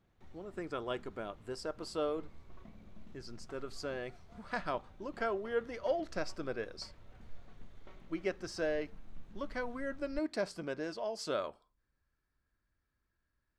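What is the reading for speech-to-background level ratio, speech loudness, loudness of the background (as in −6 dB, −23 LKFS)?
20.0 dB, −39.0 LKFS, −59.0 LKFS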